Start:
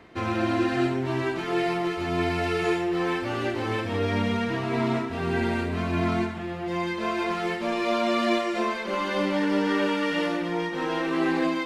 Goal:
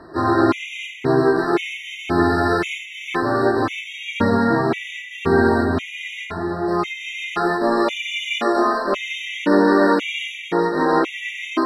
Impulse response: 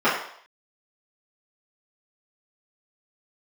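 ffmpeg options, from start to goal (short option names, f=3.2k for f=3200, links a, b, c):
-filter_complex "[0:a]asplit=2[a][b];[b]asetrate=52444,aresample=44100,atempo=0.840896,volume=-9dB[c];[a][c]amix=inputs=2:normalize=0,asplit=2[d][e];[1:a]atrim=start_sample=2205[f];[e][f]afir=irnorm=-1:irlink=0,volume=-22dB[g];[d][g]amix=inputs=2:normalize=0,afftfilt=real='re*gt(sin(2*PI*0.95*pts/sr)*(1-2*mod(floor(b*sr/1024/1900),2)),0)':imag='im*gt(sin(2*PI*0.95*pts/sr)*(1-2*mod(floor(b*sr/1024/1900),2)),0)':win_size=1024:overlap=0.75,volume=6.5dB"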